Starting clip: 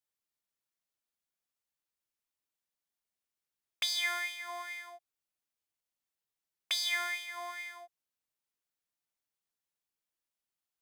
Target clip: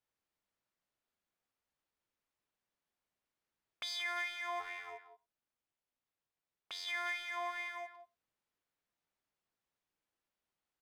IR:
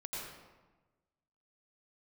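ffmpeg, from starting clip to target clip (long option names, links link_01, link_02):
-filter_complex "[0:a]lowpass=frequency=1800:poles=1,asplit=2[link_01][link_02];[link_02]acompressor=threshold=-47dB:ratio=6,volume=2.5dB[link_03];[link_01][link_03]amix=inputs=2:normalize=0,alimiter=level_in=5.5dB:limit=-24dB:level=0:latency=1:release=23,volume=-5.5dB,asplit=3[link_04][link_05][link_06];[link_04]afade=type=out:start_time=4.59:duration=0.02[link_07];[link_05]tremolo=f=260:d=0.857,afade=type=in:start_time=4.59:duration=0.02,afade=type=out:start_time=6.86:duration=0.02[link_08];[link_06]afade=type=in:start_time=6.86:duration=0.02[link_09];[link_07][link_08][link_09]amix=inputs=3:normalize=0,asplit=2[link_10][link_11];[link_11]adelay=180,highpass=300,lowpass=3400,asoftclip=type=hard:threshold=-38.5dB,volume=-11dB[link_12];[link_10][link_12]amix=inputs=2:normalize=0,asplit=2[link_13][link_14];[1:a]atrim=start_sample=2205,afade=type=out:start_time=0.15:duration=0.01,atrim=end_sample=7056[link_15];[link_14][link_15]afir=irnorm=-1:irlink=0,volume=-15.5dB[link_16];[link_13][link_16]amix=inputs=2:normalize=0,volume=-1.5dB"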